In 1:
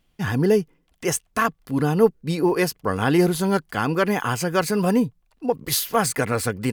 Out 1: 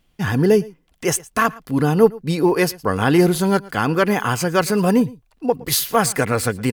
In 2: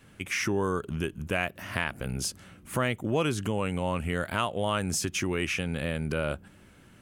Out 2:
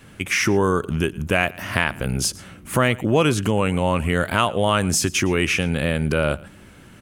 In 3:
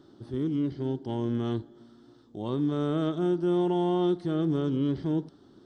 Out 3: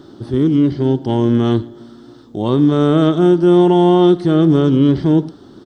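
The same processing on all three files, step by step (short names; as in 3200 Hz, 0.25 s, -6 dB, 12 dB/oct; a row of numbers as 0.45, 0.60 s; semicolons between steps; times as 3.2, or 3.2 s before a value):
echo 0.114 s -22 dB; normalise peaks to -1.5 dBFS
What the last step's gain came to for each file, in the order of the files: +3.5, +9.0, +15.0 dB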